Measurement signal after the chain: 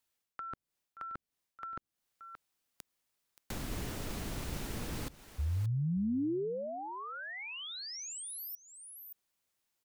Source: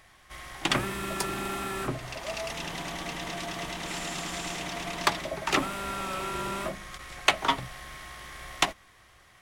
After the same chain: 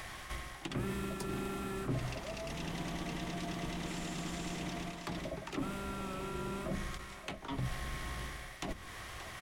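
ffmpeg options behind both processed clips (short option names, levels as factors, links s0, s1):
-filter_complex "[0:a]areverse,acompressor=threshold=0.00631:ratio=8,areverse,aecho=1:1:576:0.119,acrossover=split=400[s0][s1];[s1]acompressor=threshold=0.00158:ratio=5[s2];[s0][s2]amix=inputs=2:normalize=0,volume=4.22"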